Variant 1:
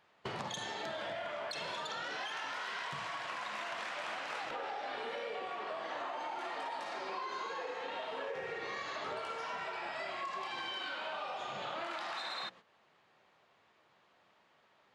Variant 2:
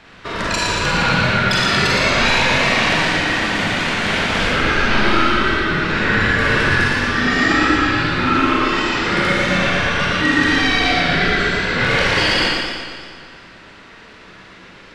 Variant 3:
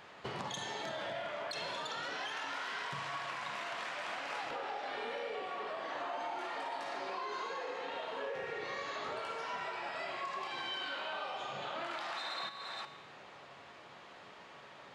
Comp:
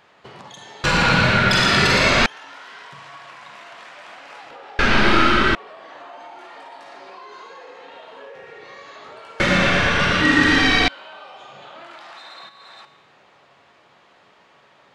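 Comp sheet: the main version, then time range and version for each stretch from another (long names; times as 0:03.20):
3
0:00.84–0:02.26: punch in from 2
0:04.79–0:05.55: punch in from 2
0:09.40–0:10.88: punch in from 2
not used: 1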